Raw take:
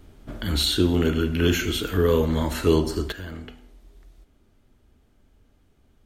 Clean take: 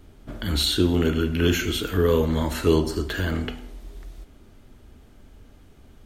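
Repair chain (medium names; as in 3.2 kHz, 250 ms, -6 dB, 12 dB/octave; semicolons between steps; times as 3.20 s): gain correction +10.5 dB, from 3.12 s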